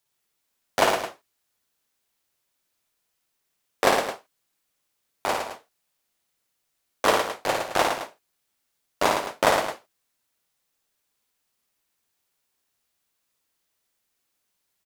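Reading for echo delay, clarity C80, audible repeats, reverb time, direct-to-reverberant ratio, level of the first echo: 55 ms, no reverb, 4, no reverb, no reverb, -4.0 dB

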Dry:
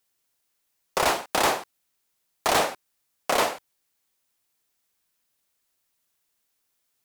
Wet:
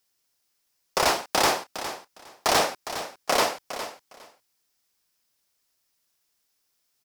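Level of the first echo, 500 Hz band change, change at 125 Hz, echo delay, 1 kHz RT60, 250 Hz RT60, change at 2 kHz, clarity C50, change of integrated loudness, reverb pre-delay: -11.5 dB, +0.5 dB, +0.5 dB, 409 ms, no reverb, no reverb, +0.5 dB, no reverb, -0.5 dB, no reverb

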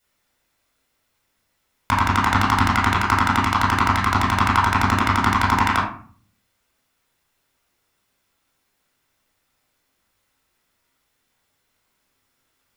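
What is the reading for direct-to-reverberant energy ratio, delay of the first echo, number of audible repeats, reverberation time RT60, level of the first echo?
-6.0 dB, no echo, no echo, 0.45 s, no echo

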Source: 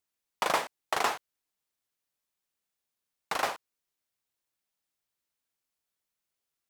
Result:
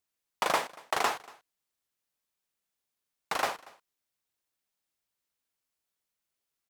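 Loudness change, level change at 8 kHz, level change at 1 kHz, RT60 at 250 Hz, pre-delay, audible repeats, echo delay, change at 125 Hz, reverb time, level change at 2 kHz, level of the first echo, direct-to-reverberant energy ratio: 0.0 dB, 0.0 dB, 0.0 dB, no reverb, no reverb, 1, 235 ms, 0.0 dB, no reverb, 0.0 dB, -23.0 dB, no reverb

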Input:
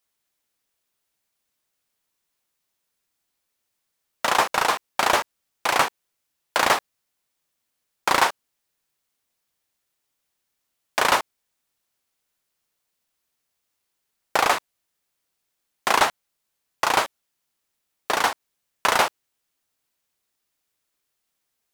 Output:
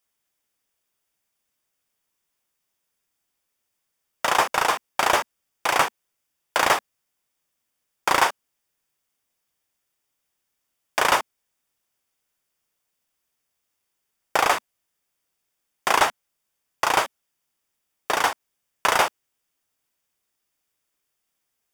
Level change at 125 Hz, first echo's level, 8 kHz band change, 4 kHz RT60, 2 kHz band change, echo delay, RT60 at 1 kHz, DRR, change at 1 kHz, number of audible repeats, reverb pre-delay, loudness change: -0.5 dB, no echo, 0.0 dB, no reverb, 0.0 dB, no echo, no reverb, no reverb, 0.0 dB, no echo, no reverb, 0.0 dB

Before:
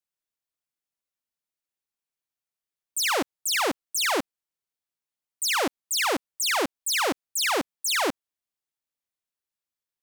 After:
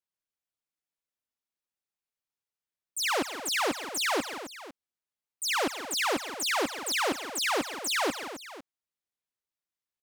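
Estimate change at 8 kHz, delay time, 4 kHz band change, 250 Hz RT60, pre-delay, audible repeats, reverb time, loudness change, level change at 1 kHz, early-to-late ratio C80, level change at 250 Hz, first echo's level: -5.0 dB, 131 ms, -3.5 dB, no reverb, no reverb, 4, no reverb, -4.0 dB, -2.5 dB, no reverb, -2.5 dB, -19.0 dB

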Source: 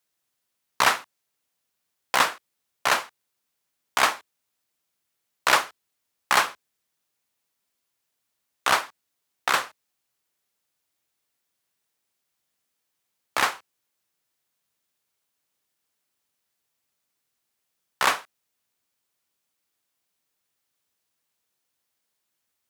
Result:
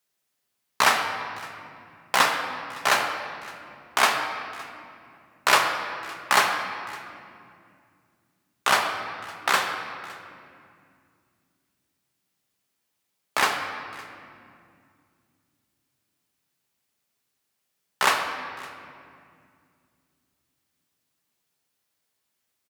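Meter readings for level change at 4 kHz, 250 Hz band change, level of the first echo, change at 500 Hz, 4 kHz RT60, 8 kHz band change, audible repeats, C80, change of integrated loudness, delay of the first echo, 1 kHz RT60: +1.5 dB, +3.0 dB, -22.0 dB, +2.5 dB, 1.7 s, +1.0 dB, 1, 6.0 dB, -0.5 dB, 562 ms, 2.2 s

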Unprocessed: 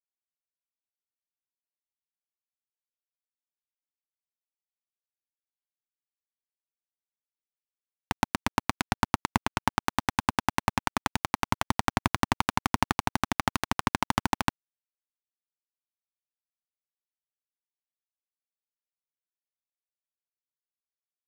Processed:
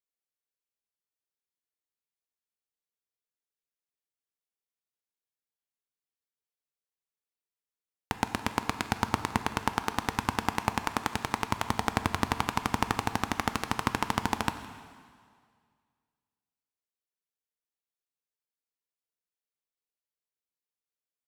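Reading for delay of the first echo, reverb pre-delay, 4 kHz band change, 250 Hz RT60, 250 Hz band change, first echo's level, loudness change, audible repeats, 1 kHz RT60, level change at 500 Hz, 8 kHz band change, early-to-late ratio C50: 164 ms, 6 ms, -2.0 dB, 1.9 s, -2.0 dB, -20.5 dB, -2.0 dB, 1, 2.0 s, 0.0 dB, -2.0 dB, 10.5 dB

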